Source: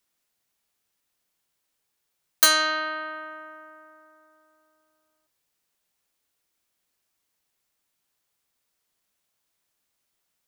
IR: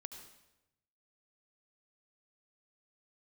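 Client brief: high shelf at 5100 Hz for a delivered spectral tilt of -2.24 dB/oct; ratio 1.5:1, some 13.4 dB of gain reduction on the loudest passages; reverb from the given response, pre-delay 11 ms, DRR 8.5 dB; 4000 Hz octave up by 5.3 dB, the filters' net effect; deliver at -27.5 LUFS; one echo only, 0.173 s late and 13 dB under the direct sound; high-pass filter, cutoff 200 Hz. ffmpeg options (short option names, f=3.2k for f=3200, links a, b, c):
-filter_complex "[0:a]highpass=200,equalizer=f=4k:t=o:g=8,highshelf=f=5.1k:g=-6,acompressor=threshold=-50dB:ratio=1.5,aecho=1:1:173:0.224,asplit=2[a][b];[1:a]atrim=start_sample=2205,adelay=11[c];[b][c]afir=irnorm=-1:irlink=0,volume=-4dB[d];[a][d]amix=inputs=2:normalize=0,volume=6.5dB"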